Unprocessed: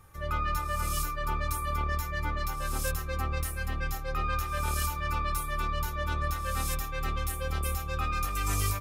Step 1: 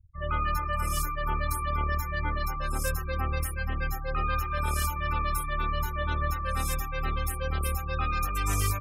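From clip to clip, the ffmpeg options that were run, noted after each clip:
-af "afftfilt=real='re*gte(hypot(re,im),0.0126)':imag='im*gte(hypot(re,im),0.0126)':win_size=1024:overlap=0.75,volume=2dB"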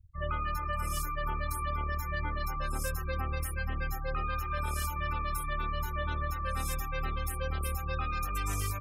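-af "acompressor=threshold=-29dB:ratio=6"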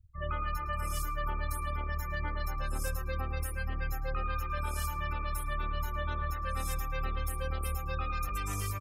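-filter_complex "[0:a]asplit=2[a][b];[b]adelay=110,lowpass=f=2k:p=1,volume=-9dB,asplit=2[c][d];[d]adelay=110,lowpass=f=2k:p=1,volume=0.3,asplit=2[e][f];[f]adelay=110,lowpass=f=2k:p=1,volume=0.3[g];[a][c][e][g]amix=inputs=4:normalize=0,volume=-2dB"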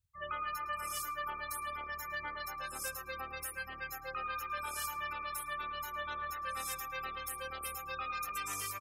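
-af "highpass=f=1.1k:p=1,volume=1.5dB"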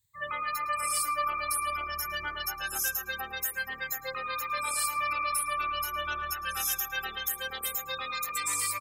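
-filter_complex "[0:a]afftfilt=real='re*pow(10,12/40*sin(2*PI*(1*log(max(b,1)*sr/1024/100)/log(2)-(0.25)*(pts-256)/sr)))':imag='im*pow(10,12/40*sin(2*PI*(1*log(max(b,1)*sr/1024/100)/log(2)-(0.25)*(pts-256)/sr)))':win_size=1024:overlap=0.75,highshelf=f=2.3k:g=9,asplit=2[a][b];[b]alimiter=level_in=0.5dB:limit=-24dB:level=0:latency=1:release=138,volume=-0.5dB,volume=-1.5dB[c];[a][c]amix=inputs=2:normalize=0,volume=-2.5dB"

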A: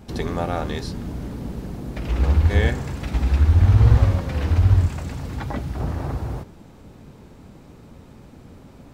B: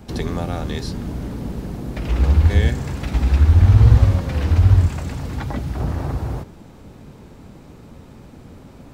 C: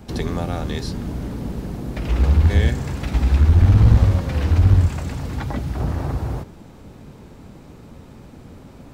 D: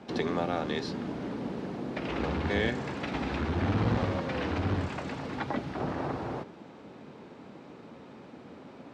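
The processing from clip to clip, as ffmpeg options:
-filter_complex "[0:a]acrossover=split=300|3000[a][b][c];[b]acompressor=threshold=-33dB:ratio=2.5[d];[a][d][c]amix=inputs=3:normalize=0,volume=3dB"
-af "aeval=exprs='clip(val(0),-1,0.299)':c=same"
-af "highpass=250,lowpass=3.8k,volume=-1.5dB"

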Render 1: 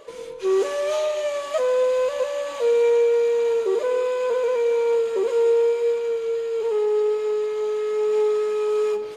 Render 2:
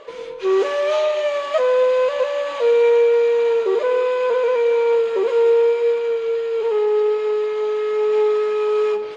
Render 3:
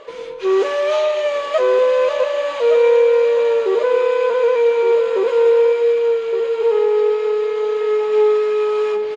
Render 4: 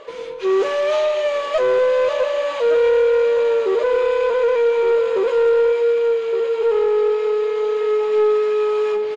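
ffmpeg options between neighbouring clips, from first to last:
-af "lowpass=3.7k,lowshelf=f=410:g=-8,volume=7dB"
-af "aecho=1:1:1166:0.335,volume=1.5dB"
-af "asoftclip=type=tanh:threshold=-10.5dB"

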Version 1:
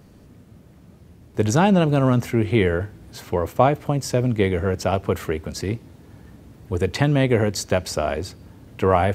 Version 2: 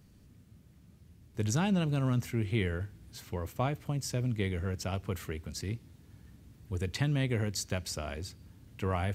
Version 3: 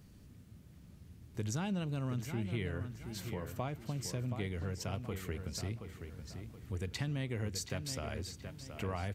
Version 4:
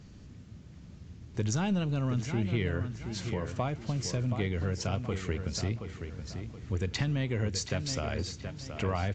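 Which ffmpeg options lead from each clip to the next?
-af "equalizer=f=620:t=o:w=2.7:g=-11,volume=-7dB"
-filter_complex "[0:a]acompressor=threshold=-42dB:ratio=2,asplit=2[a][b];[b]adelay=725,lowpass=f=4.8k:p=1,volume=-8dB,asplit=2[c][d];[d]adelay=725,lowpass=f=4.8k:p=1,volume=0.38,asplit=2[e][f];[f]adelay=725,lowpass=f=4.8k:p=1,volume=0.38,asplit=2[g][h];[h]adelay=725,lowpass=f=4.8k:p=1,volume=0.38[i];[a][c][e][g][i]amix=inputs=5:normalize=0,volume=1.5dB"
-af "aeval=exprs='0.0841*(cos(1*acos(clip(val(0)/0.0841,-1,1)))-cos(1*PI/2))+0.00422*(cos(4*acos(clip(val(0)/0.0841,-1,1)))-cos(4*PI/2))':c=same,volume=7dB" -ar 16000 -c:a aac -b:a 48k

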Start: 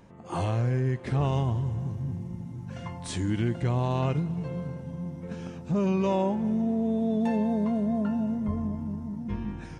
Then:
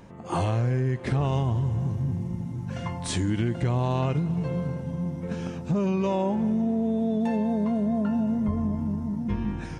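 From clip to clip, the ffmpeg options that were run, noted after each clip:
-af "acompressor=threshold=-27dB:ratio=6,volume=5.5dB"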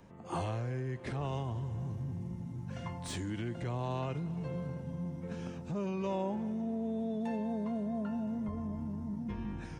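-filter_complex "[0:a]acrossover=split=360|380|3000[a][b][c][d];[a]alimiter=limit=-24dB:level=0:latency=1[e];[d]asoftclip=type=tanh:threshold=-30.5dB[f];[e][b][c][f]amix=inputs=4:normalize=0,volume=-8.5dB"

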